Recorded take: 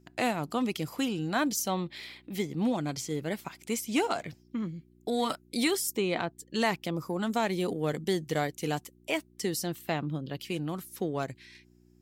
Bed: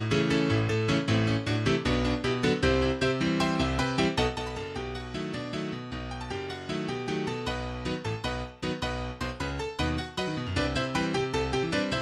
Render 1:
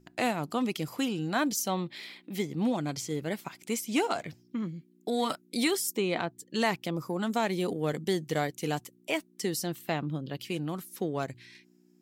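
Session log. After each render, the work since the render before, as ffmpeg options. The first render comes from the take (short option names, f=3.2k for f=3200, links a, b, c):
-af "bandreject=f=60:t=h:w=4,bandreject=f=120:t=h:w=4"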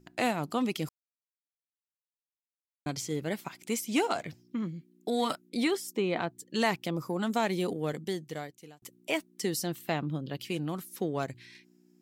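-filter_complex "[0:a]asettb=1/sr,asplit=3[a][b][c];[a]atrim=end=5.494[d];[b]atrim=start=5.49:end=6.22,asetpts=PTS-STARTPTS,afade=t=in:d=0.004:c=qsin,afade=t=out:st=0.726:d=0.004:c=qsin,highshelf=f=4.6k:g=-11.5[e];[c]atrim=start=6.216[f];[d][e]acrossfade=d=0.004:c1=hsin:c2=qsin[g];[g][f]acrossfade=d=0.004:c1=qsin:c2=hsin,asplit=4[h][i][j][k];[h]atrim=end=0.89,asetpts=PTS-STARTPTS,afade=t=out:st=0.886:d=0.004:c=hsin[l];[i]atrim=start=0.89:end=2.86,asetpts=PTS-STARTPTS,volume=0[m];[j]atrim=start=2.86:end=8.82,asetpts=PTS-STARTPTS,afade=t=in:d=0.004:c=hsin,afade=t=out:st=4.71:d=1.25[n];[k]atrim=start=8.82,asetpts=PTS-STARTPTS,afade=t=in:d=0.004:c=hsin[o];[l][m][n][o]concat=n=4:v=0:a=1"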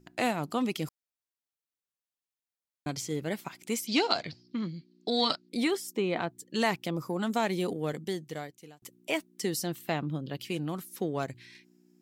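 -filter_complex "[0:a]asettb=1/sr,asplit=3[a][b][c];[a]atrim=end=3.874[d];[b]atrim=start=3.87:end=5.49,asetpts=PTS-STARTPTS,afade=t=in:d=0.004:c=qsin,afade=t=out:st=1.616:d=0.004:c=qsin,lowpass=f=4.5k:t=q:w=7[e];[c]atrim=start=5.486[f];[d][e]acrossfade=d=0.004:c1=hsin:c2=qsin[g];[g][f]acrossfade=d=0.004:c1=qsin:c2=hsin"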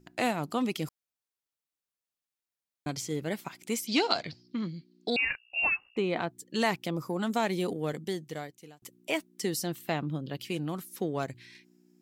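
-filter_complex "[0:a]asettb=1/sr,asplit=3[a][b][c];[a]atrim=end=5.164[d];[b]atrim=start=5.16:end=5.97,asetpts=PTS-STARTPTS,afade=t=in:d=0.004:c=qsin,afade=t=out:st=0.806:d=0.004:c=qsin,lowpass=f=2.6k:t=q:w=0.5098,lowpass=f=2.6k:t=q:w=0.6013,lowpass=f=2.6k:t=q:w=0.9,lowpass=f=2.6k:t=q:w=2.563,afreqshift=-3000[e];[c]atrim=start=5.966[f];[d][e]acrossfade=d=0.004:c1=hsin:c2=qsin[g];[g][f]acrossfade=d=0.004:c1=qsin:c2=hsin"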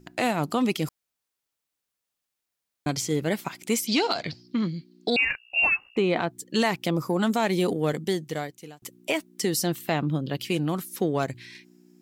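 -af "acontrast=90,alimiter=limit=-14dB:level=0:latency=1:release=144"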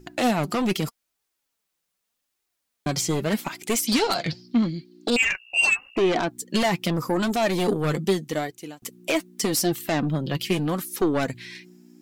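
-af "aeval=exprs='0.211*sin(PI/2*1.78*val(0)/0.211)':c=same,flanger=delay=2.3:depth=3.8:regen=42:speed=0.82:shape=triangular"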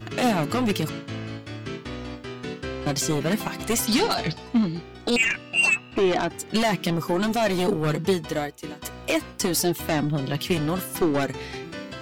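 -filter_complex "[1:a]volume=-8dB[a];[0:a][a]amix=inputs=2:normalize=0"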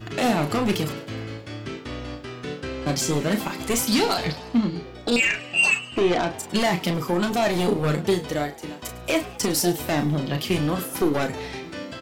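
-filter_complex "[0:a]asplit=2[a][b];[b]adelay=34,volume=-7.5dB[c];[a][c]amix=inputs=2:normalize=0,asplit=6[d][e][f][g][h][i];[e]adelay=104,afreqshift=91,volume=-19dB[j];[f]adelay=208,afreqshift=182,volume=-23.6dB[k];[g]adelay=312,afreqshift=273,volume=-28.2dB[l];[h]adelay=416,afreqshift=364,volume=-32.7dB[m];[i]adelay=520,afreqshift=455,volume=-37.3dB[n];[d][j][k][l][m][n]amix=inputs=6:normalize=0"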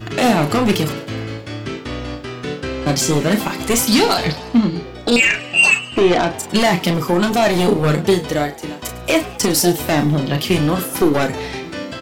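-af "volume=7dB"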